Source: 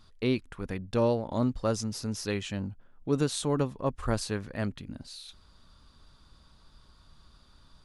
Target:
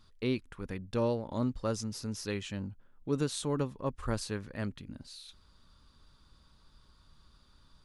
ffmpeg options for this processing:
-af "equalizer=f=700:t=o:w=0.3:g=-5,volume=0.631"

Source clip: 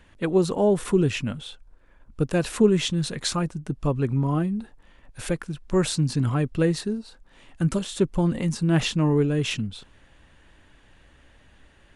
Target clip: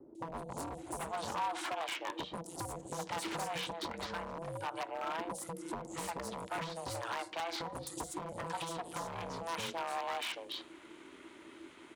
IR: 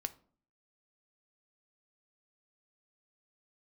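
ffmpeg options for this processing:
-filter_complex "[0:a]asplit=2[s0][s1];[s1]highshelf=f=3200:g=7.5[s2];[1:a]atrim=start_sample=2205[s3];[s2][s3]afir=irnorm=-1:irlink=0,volume=1.33[s4];[s0][s4]amix=inputs=2:normalize=0,aeval=exprs='0.891*(cos(1*acos(clip(val(0)/0.891,-1,1)))-cos(1*PI/2))+0.0794*(cos(4*acos(clip(val(0)/0.891,-1,1)))-cos(4*PI/2))+0.0447*(cos(8*acos(clip(val(0)/0.891,-1,1)))-cos(8*PI/2))':c=same,acrossover=split=340|2000[s5][s6][s7];[s5]acompressor=threshold=0.0708:ratio=4[s8];[s6]acompressor=threshold=0.141:ratio=4[s9];[s7]acompressor=threshold=0.0447:ratio=4[s10];[s8][s9][s10]amix=inputs=3:normalize=0,aeval=exprs='val(0)*sin(2*PI*330*n/s)':c=same,acrossover=split=670|5200[s11][s12][s13];[s13]adelay=150[s14];[s12]adelay=780[s15];[s11][s15][s14]amix=inputs=3:normalize=0,acompressor=threshold=0.0316:ratio=5,aeval=exprs='0.0376*(abs(mod(val(0)/0.0376+3,4)-2)-1)':c=same,highpass=f=210:p=1,equalizer=f=980:t=o:w=0.24:g=7.5,volume=0.708"

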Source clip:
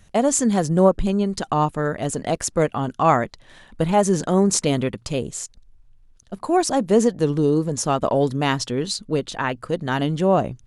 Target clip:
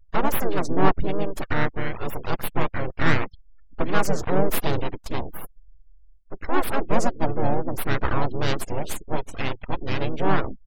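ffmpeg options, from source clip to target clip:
-filter_complex "[0:a]aeval=exprs='abs(val(0))':c=same,afftfilt=real='re*gte(hypot(re,im),0.02)':imag='im*gte(hypot(re,im),0.02)':win_size=1024:overlap=0.75,asplit=4[s0][s1][s2][s3];[s1]asetrate=33038,aresample=44100,atempo=1.33484,volume=0.501[s4];[s2]asetrate=35002,aresample=44100,atempo=1.25992,volume=0.631[s5];[s3]asetrate=55563,aresample=44100,atempo=0.793701,volume=0.158[s6];[s0][s4][s5][s6]amix=inputs=4:normalize=0,volume=0.668"

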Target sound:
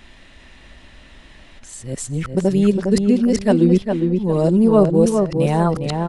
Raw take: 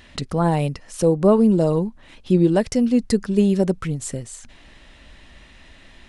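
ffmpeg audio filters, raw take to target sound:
-filter_complex "[0:a]areverse,asplit=2[s0][s1];[s1]adelay=407,lowpass=f=2400:p=1,volume=0.596,asplit=2[s2][s3];[s3]adelay=407,lowpass=f=2400:p=1,volume=0.28,asplit=2[s4][s5];[s5]adelay=407,lowpass=f=2400:p=1,volume=0.28,asplit=2[s6][s7];[s7]adelay=407,lowpass=f=2400:p=1,volume=0.28[s8];[s2][s4][s6][s8]amix=inputs=4:normalize=0[s9];[s0][s9]amix=inputs=2:normalize=0,volume=1.19"

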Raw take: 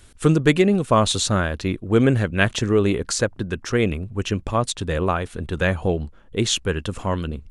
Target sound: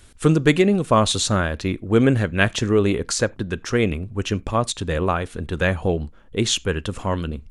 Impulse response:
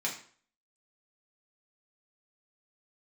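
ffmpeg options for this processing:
-filter_complex "[0:a]asplit=2[s0][s1];[1:a]atrim=start_sample=2205,atrim=end_sample=4410[s2];[s1][s2]afir=irnorm=-1:irlink=0,volume=0.0708[s3];[s0][s3]amix=inputs=2:normalize=0"

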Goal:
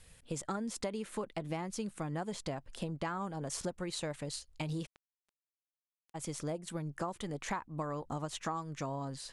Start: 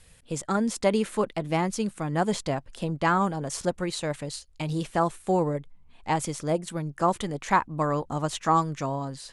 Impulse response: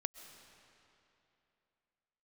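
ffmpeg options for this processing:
-filter_complex "[0:a]acompressor=threshold=0.0316:ratio=16,asplit=3[s0][s1][s2];[s0]afade=t=out:st=4.85:d=0.02[s3];[s1]acrusher=bits=2:mix=0:aa=0.5,afade=t=in:st=4.85:d=0.02,afade=t=out:st=6.14:d=0.02[s4];[s2]afade=t=in:st=6.14:d=0.02[s5];[s3][s4][s5]amix=inputs=3:normalize=0,volume=0.668"

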